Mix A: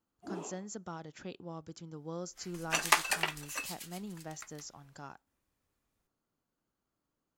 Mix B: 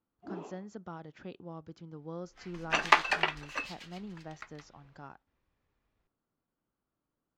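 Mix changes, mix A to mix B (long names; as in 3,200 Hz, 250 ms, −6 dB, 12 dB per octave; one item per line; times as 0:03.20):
second sound +6.0 dB
master: add high-frequency loss of the air 220 metres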